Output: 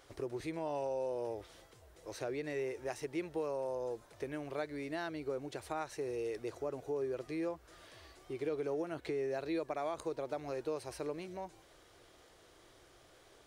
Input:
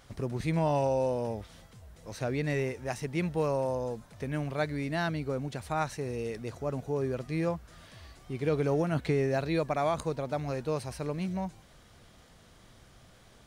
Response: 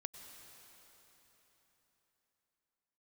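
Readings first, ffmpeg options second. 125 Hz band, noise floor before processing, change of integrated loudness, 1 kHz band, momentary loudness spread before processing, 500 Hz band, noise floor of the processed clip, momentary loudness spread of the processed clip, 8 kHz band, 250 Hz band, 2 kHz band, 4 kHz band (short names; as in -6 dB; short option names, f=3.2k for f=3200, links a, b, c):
-18.5 dB, -57 dBFS, -8.0 dB, -9.0 dB, 11 LU, -6.0 dB, -63 dBFS, 10 LU, -6.5 dB, -8.5 dB, -8.5 dB, -7.5 dB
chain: -af "acompressor=threshold=-33dB:ratio=4,lowshelf=f=270:t=q:w=3:g=-7.5,volume=-3.5dB"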